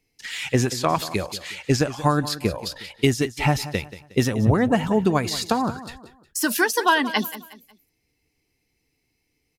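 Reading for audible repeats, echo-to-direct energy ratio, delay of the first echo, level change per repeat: 3, -14.5 dB, 0.181 s, -9.0 dB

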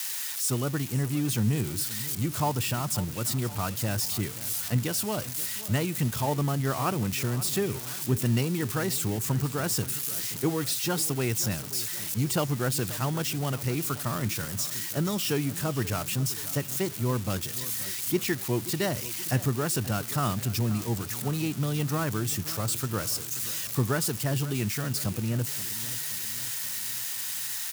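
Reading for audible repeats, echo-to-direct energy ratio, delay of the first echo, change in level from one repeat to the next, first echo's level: 4, -15.0 dB, 0.529 s, -5.0 dB, -16.5 dB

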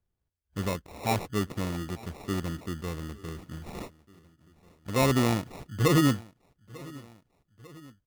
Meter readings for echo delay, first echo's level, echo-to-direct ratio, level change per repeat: 0.896 s, -22.0 dB, -20.5 dB, -4.5 dB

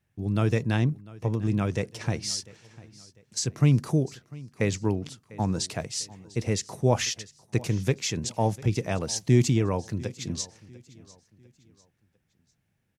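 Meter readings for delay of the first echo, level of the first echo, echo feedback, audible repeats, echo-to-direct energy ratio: 0.698 s, -21.0 dB, 37%, 2, -20.5 dB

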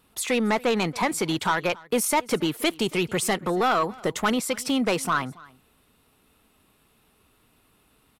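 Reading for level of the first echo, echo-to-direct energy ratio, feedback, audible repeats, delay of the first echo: -23.0 dB, -23.0 dB, no steady repeat, 1, 0.277 s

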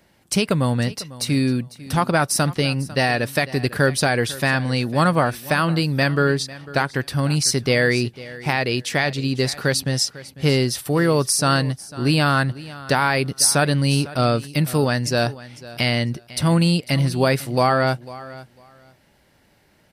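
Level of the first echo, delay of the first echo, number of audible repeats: -18.0 dB, 0.499 s, 2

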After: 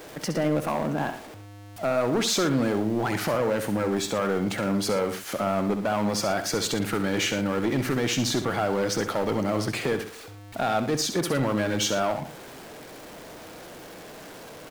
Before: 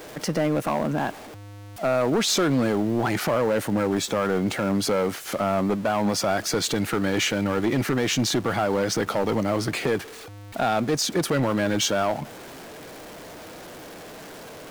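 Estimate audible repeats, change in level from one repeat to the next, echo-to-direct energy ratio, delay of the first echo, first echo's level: 2, no steady repeat, -8.5 dB, 66 ms, -9.5 dB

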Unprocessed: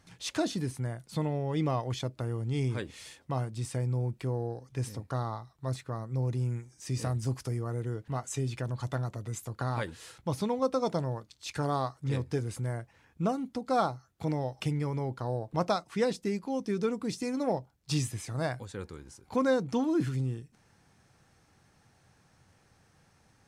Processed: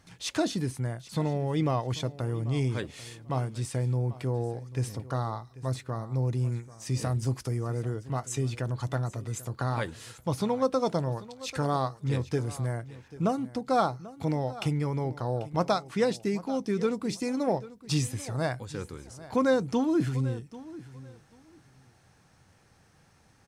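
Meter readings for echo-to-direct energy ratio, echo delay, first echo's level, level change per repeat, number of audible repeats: -17.5 dB, 0.79 s, -17.5 dB, -14.5 dB, 2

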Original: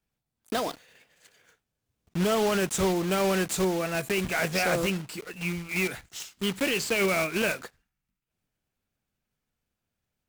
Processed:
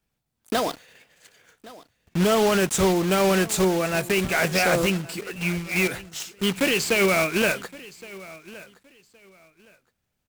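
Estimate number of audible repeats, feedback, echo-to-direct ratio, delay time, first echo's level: 2, 22%, -20.0 dB, 1.117 s, -20.0 dB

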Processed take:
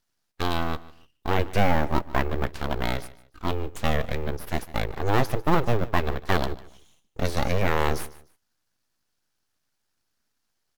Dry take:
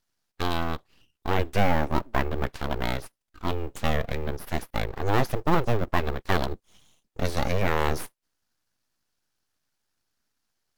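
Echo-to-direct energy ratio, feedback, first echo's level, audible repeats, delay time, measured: -18.5 dB, 28%, -19.0 dB, 2, 0.149 s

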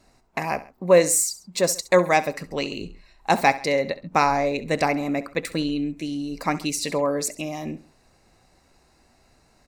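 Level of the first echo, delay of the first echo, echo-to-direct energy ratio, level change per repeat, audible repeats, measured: -17.0 dB, 67 ms, -16.0 dB, -6.5 dB, 2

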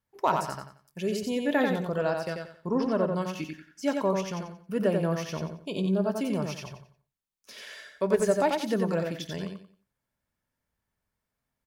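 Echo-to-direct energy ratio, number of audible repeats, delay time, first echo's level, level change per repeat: -4.0 dB, 3, 90 ms, -4.5 dB, -11.0 dB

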